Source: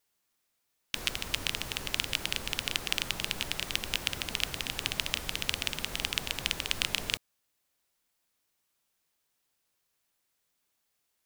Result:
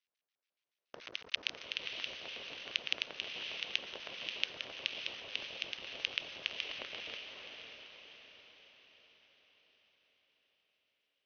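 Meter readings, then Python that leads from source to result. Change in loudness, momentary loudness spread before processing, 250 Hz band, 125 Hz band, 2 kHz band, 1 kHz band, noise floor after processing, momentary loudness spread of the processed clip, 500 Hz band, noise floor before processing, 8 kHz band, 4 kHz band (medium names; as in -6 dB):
-7.5 dB, 3 LU, -14.0 dB, -21.5 dB, -6.0 dB, -10.5 dB, under -85 dBFS, 15 LU, -6.0 dB, -79 dBFS, -19.5 dB, -6.5 dB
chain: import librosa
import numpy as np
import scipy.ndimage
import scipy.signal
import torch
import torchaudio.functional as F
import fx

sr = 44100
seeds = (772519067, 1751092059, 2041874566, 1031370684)

y = fx.cycle_switch(x, sr, every=3, mode='muted')
y = fx.peak_eq(y, sr, hz=810.0, db=-5.5, octaves=0.53)
y = fx.filter_lfo_bandpass(y, sr, shape='square', hz=7.0, low_hz=600.0, high_hz=2800.0, q=1.7)
y = fx.brickwall_lowpass(y, sr, high_hz=6400.0)
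y = fx.echo_diffused(y, sr, ms=583, feedback_pct=50, wet_db=-5)
y = y * librosa.db_to_amplitude(-1.0)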